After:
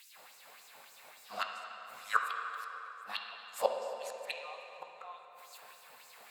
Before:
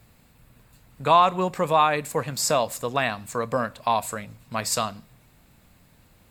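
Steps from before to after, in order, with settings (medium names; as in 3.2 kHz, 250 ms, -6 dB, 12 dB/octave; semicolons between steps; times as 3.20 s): reverse the whole clip; bass shelf 65 Hz -6.5 dB; inverted gate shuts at -19 dBFS, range -40 dB; LFO high-pass sine 3.5 Hz 610–6200 Hz; on a send: reverberation RT60 3.7 s, pre-delay 3 ms, DRR 1.5 dB; on the sum: trim +3.5 dB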